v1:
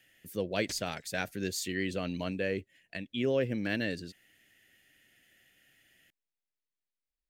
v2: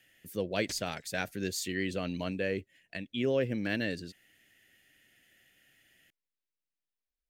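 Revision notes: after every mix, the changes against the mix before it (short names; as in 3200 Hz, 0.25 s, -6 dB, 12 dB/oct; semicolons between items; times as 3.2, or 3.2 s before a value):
none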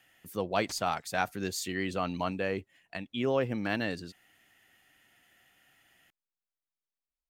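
background -4.0 dB; master: add band shelf 980 Hz +11.5 dB 1.1 oct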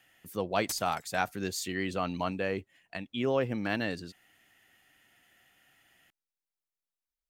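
background: remove air absorption 150 m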